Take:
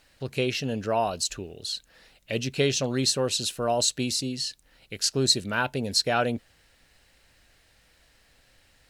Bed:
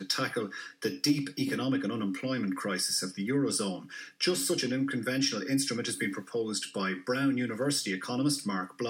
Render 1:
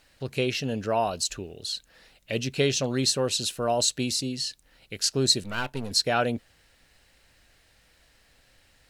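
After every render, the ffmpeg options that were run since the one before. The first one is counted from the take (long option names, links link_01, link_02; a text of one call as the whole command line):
ffmpeg -i in.wav -filter_complex "[0:a]asettb=1/sr,asplit=3[link_01][link_02][link_03];[link_01]atrim=end=5.434[link_04];[link_02]atrim=start=5.43:end=5.91,asetpts=PTS-STARTPTS,afade=type=in:duration=0.004:curve=qsin,afade=type=out:start_time=0.476:duration=0.004:curve=qsin,aeval=exprs='if(lt(val(0),0),0.251*val(0),val(0))':channel_layout=same[link_05];[link_03]atrim=start=5.906[link_06];[link_04][link_05]acrossfade=duration=0.004:curve1=hsin:curve2=qsin[link_07];[link_07][link_06]acrossfade=duration=0.004:curve1=qsin:curve2=hsin" out.wav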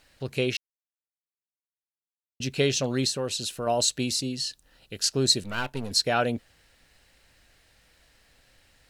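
ffmpeg -i in.wav -filter_complex "[0:a]asettb=1/sr,asplit=3[link_01][link_02][link_03];[link_01]atrim=end=3.074[link_04];[link_02]atrim=start=3.07:end=3.67,asetpts=PTS-STARTPTS,afade=type=in:duration=0.004:curve=qsin,afade=type=out:start_time=0.596:duration=0.004:curve=qsin,acompressor=threshold=-32dB:ratio=1.5:attack=3.2:release=140:knee=1:detection=peak[link_05];[link_03]atrim=start=3.666[link_06];[link_04][link_05]acrossfade=duration=0.004:curve1=hsin:curve2=qsin[link_07];[link_07][link_06]acrossfade=duration=0.004:curve1=qsin:curve2=hsin,asettb=1/sr,asplit=3[link_08][link_09][link_10];[link_08]atrim=end=4.354[link_11];[link_09]atrim=start=4.35:end=5.04,asetpts=PTS-STARTPTS,afade=type=in:duration=0.004:curve=qsin,afade=type=out:start_time=0.686:duration=0.004:curve=qsin,bandreject=frequency=2200:width=6.3[link_12];[link_10]atrim=start=5.036[link_13];[link_11][link_12]acrossfade=duration=0.004:curve1=hsin:curve2=qsin[link_14];[link_14][link_13]acrossfade=duration=0.004:curve1=qsin:curve2=hsin,asplit=3[link_15][link_16][link_17];[link_15]atrim=end=0.57,asetpts=PTS-STARTPTS,afade=type=out:start_time=0.566:duration=0.004:curve=hsin[link_18];[link_16]atrim=start=0.57:end=2.4,asetpts=PTS-STARTPTS,volume=0[link_19];[link_17]atrim=start=2.4,asetpts=PTS-STARTPTS,afade=type=in:duration=0.004:curve=hsin[link_20];[link_18][link_19][link_20]concat=n=3:v=0:a=1" out.wav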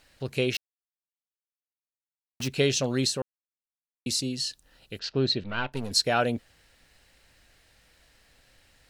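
ffmpeg -i in.wav -filter_complex "[0:a]asettb=1/sr,asplit=3[link_01][link_02][link_03];[link_01]atrim=end=0.544[link_04];[link_02]atrim=start=0.54:end=2.48,asetpts=PTS-STARTPTS,afade=type=in:duration=0.004:curve=qsin,afade=type=out:start_time=1.936:duration=0.004:curve=qsin,acrusher=bits=7:dc=4:mix=0:aa=0.000001[link_05];[link_03]atrim=start=2.476[link_06];[link_04][link_05]acrossfade=duration=0.004:curve1=hsin:curve2=qsin[link_07];[link_07][link_06]acrossfade=duration=0.004:curve1=qsin:curve2=hsin,asplit=3[link_08][link_09][link_10];[link_08]afade=type=out:start_time=4.98:duration=0.02[link_11];[link_09]lowpass=frequency=3800:width=0.5412,lowpass=frequency=3800:width=1.3066,afade=type=in:start_time=4.98:duration=0.02,afade=type=out:start_time=5.72:duration=0.02[link_12];[link_10]afade=type=in:start_time=5.72:duration=0.02[link_13];[link_11][link_12][link_13]amix=inputs=3:normalize=0,asplit=3[link_14][link_15][link_16];[link_14]atrim=end=3.22,asetpts=PTS-STARTPTS,afade=type=out:start_time=3.216:duration=0.004:curve=hsin[link_17];[link_15]atrim=start=3.22:end=4.06,asetpts=PTS-STARTPTS,volume=0[link_18];[link_16]atrim=start=4.06,asetpts=PTS-STARTPTS,afade=type=in:duration=0.004:curve=hsin[link_19];[link_17][link_18][link_19]concat=n=3:v=0:a=1" out.wav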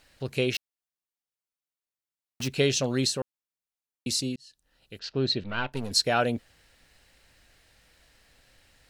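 ffmpeg -i in.wav -filter_complex "[0:a]asplit=2[link_01][link_02];[link_01]atrim=end=4.36,asetpts=PTS-STARTPTS,afade=type=out:start_time=4.356:duration=0.004:curve=hsin[link_03];[link_02]atrim=start=4.36,asetpts=PTS-STARTPTS,afade=type=in:duration=1.03[link_04];[link_03][link_04]concat=n=2:v=0:a=1" out.wav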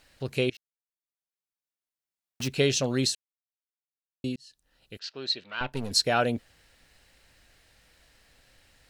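ffmpeg -i in.wav -filter_complex "[0:a]asettb=1/sr,asplit=3[link_01][link_02][link_03];[link_01]atrim=end=4.974[link_04];[link_02]atrim=start=4.97:end=5.61,asetpts=PTS-STARTPTS,afade=type=in:duration=0.004:curve=qsin,afade=type=out:start_time=0.636:duration=0.004:curve=qsin,highpass=frequency=1400:poles=1[link_05];[link_03]atrim=start=5.606[link_06];[link_04][link_05]acrossfade=duration=0.004:curve1=hsin:curve2=qsin[link_07];[link_07][link_06]acrossfade=duration=0.004:curve1=qsin:curve2=hsin,asplit=4[link_08][link_09][link_10][link_11];[link_08]atrim=end=0.5,asetpts=PTS-STARTPTS,afade=type=out:start_time=0.496:duration=0.004:curve=hsin:silence=0.0841395[link_12];[link_09]atrim=start=0.5:end=3.15,asetpts=PTS-STARTPTS,afade=type=in:duration=1.94:silence=0.0841395,afade=type=out:start_time=2.646:duration=0.004:curve=hsin[link_13];[link_10]atrim=start=3.15:end=4.24,asetpts=PTS-STARTPTS,volume=0[link_14];[link_11]atrim=start=4.24,asetpts=PTS-STARTPTS,afade=type=in:duration=0.004:curve=hsin[link_15];[link_12][link_13][link_14][link_15]concat=n=4:v=0:a=1" out.wav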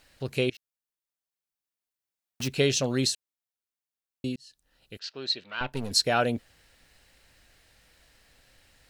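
ffmpeg -i in.wav -af "highshelf=frequency=12000:gain=3" out.wav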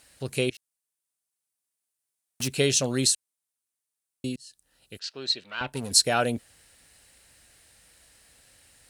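ffmpeg -i in.wav -af "highpass=47,equalizer=frequency=9300:width_type=o:width=0.86:gain=13" out.wav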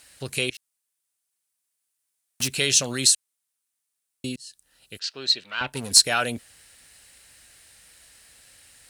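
ffmpeg -i in.wav -filter_complex "[0:a]acrossover=split=1100[link_01][link_02];[link_01]alimiter=limit=-22.5dB:level=0:latency=1[link_03];[link_02]acontrast=33[link_04];[link_03][link_04]amix=inputs=2:normalize=0" out.wav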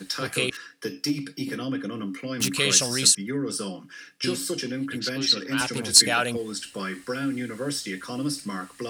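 ffmpeg -i in.wav -i bed.wav -filter_complex "[1:a]volume=0dB[link_01];[0:a][link_01]amix=inputs=2:normalize=0" out.wav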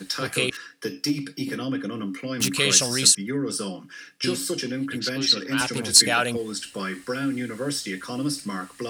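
ffmpeg -i in.wav -af "volume=1.5dB,alimiter=limit=-3dB:level=0:latency=1" out.wav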